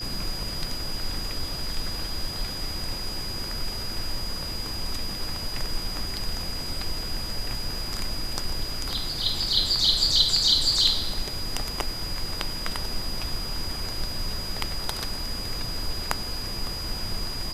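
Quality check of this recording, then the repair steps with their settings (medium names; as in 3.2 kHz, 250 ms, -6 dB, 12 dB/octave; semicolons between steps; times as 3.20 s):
whine 4.9 kHz -33 dBFS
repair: band-stop 4.9 kHz, Q 30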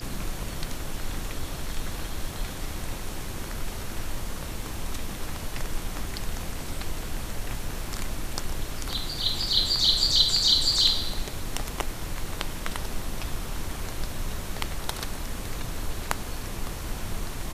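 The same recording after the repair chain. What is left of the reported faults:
nothing left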